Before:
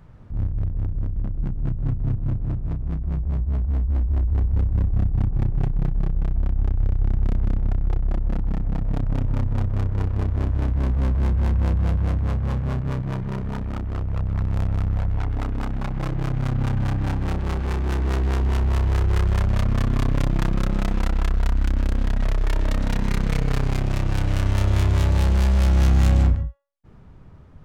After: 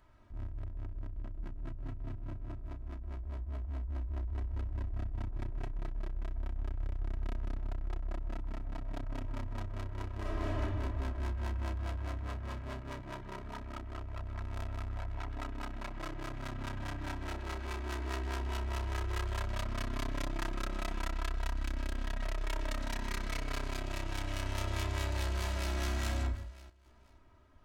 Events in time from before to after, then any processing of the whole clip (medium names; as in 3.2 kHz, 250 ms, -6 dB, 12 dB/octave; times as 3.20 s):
10.20–10.60 s: reverb throw, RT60 2 s, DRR -6.5 dB
24.91–25.73 s: echo throw 480 ms, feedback 25%, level -6.5 dB
whole clip: bass shelf 500 Hz -11.5 dB; comb 3.1 ms, depth 79%; trim -8 dB